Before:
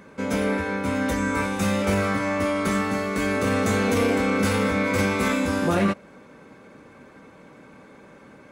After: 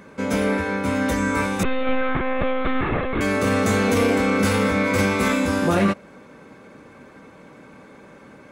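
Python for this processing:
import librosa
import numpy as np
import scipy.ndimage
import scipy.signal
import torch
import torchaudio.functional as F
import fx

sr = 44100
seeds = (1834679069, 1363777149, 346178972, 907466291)

y = fx.lpc_monotone(x, sr, seeds[0], pitch_hz=260.0, order=16, at=(1.63, 3.21))
y = y * librosa.db_to_amplitude(2.5)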